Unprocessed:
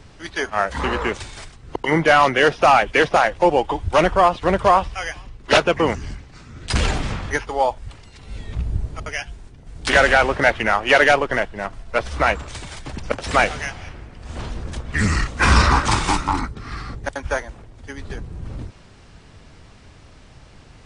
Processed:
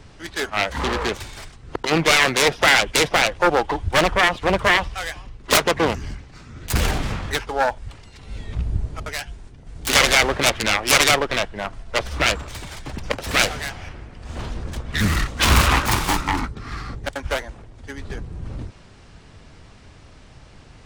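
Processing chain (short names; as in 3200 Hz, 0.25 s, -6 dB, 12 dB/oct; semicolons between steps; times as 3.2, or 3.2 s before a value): self-modulated delay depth 0.49 ms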